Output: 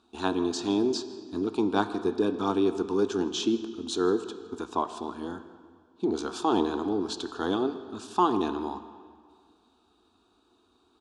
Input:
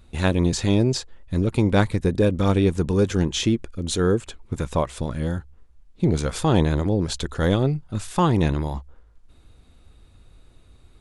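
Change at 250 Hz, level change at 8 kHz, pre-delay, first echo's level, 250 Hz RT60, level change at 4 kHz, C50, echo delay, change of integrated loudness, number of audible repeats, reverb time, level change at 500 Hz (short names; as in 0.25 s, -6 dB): -5.0 dB, -8.5 dB, 9 ms, -22.0 dB, 1.9 s, -5.0 dB, 11.5 dB, 0.161 s, -6.5 dB, 1, 1.9 s, -4.5 dB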